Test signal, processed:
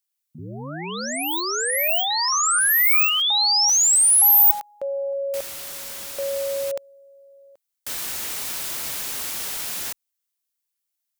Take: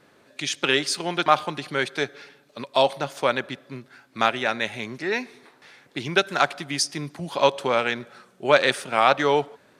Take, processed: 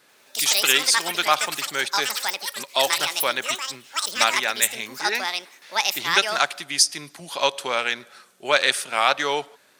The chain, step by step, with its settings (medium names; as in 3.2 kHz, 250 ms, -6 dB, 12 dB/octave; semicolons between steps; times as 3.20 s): tilt EQ +3.5 dB/octave; ever faster or slower copies 89 ms, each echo +7 st, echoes 3; trim -2 dB